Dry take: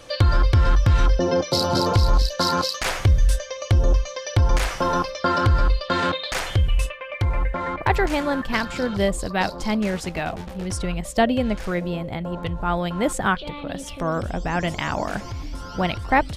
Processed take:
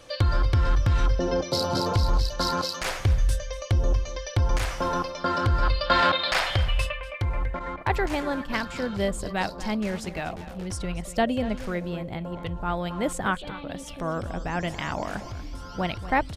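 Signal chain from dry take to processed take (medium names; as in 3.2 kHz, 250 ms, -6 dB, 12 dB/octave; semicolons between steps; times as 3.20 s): 5.63–7.01 s: time-frequency box 520–5500 Hz +8 dB; 7.59–8.50 s: expander -24 dBFS; echo from a far wall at 41 m, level -14 dB; trim -5 dB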